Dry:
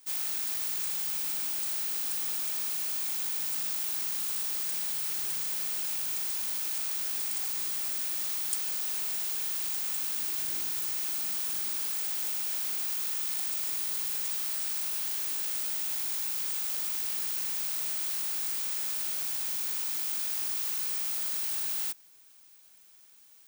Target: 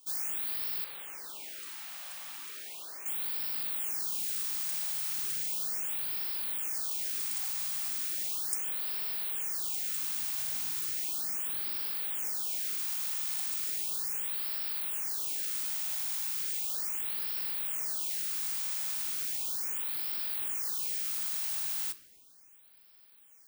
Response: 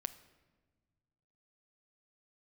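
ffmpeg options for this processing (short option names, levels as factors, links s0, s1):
-filter_complex "[0:a]asettb=1/sr,asplit=3[s0][s1][s2];[s0]atrim=end=0.844[s3];[s1]atrim=start=0.84:end=3.06,asetpts=PTS-STARTPTS,afade=t=in:d=0.004:c=qsin,afade=t=out:st=2.216:d=0.004:c=qsin,bass=f=250:g=-14,treble=f=4000:g=-10[s4];[s2]atrim=start=3.056[s5];[s3][s4]acrossfade=d=0.004:c1=hsin:c2=qsin[s6];[s6][s5]acrossfade=d=0.004:c1=qsin:c2=hsin[s7];[1:a]atrim=start_sample=2205[s8];[s7][s8]afir=irnorm=-1:irlink=0,afftfilt=real='re*(1-between(b*sr/1024,360*pow(7900/360,0.5+0.5*sin(2*PI*0.36*pts/sr))/1.41,360*pow(7900/360,0.5+0.5*sin(2*PI*0.36*pts/sr))*1.41))':imag='im*(1-between(b*sr/1024,360*pow(7900/360,0.5+0.5*sin(2*PI*0.36*pts/sr))/1.41,360*pow(7900/360,0.5+0.5*sin(2*PI*0.36*pts/sr))*1.41))':win_size=1024:overlap=0.75"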